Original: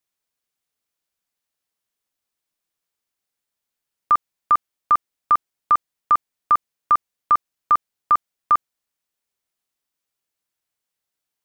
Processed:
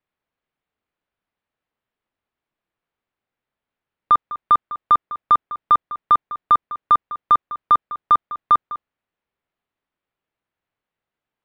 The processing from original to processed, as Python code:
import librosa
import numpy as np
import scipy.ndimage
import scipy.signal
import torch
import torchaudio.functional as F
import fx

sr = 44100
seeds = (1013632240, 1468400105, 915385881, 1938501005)

p1 = fx.fold_sine(x, sr, drive_db=3, ceiling_db=-9.0)
p2 = x + (p1 * 10.0 ** (-5.0 / 20.0))
p3 = fx.air_absorb(p2, sr, metres=470.0)
y = p3 + 10.0 ** (-15.5 / 20.0) * np.pad(p3, (int(202 * sr / 1000.0), 0))[:len(p3)]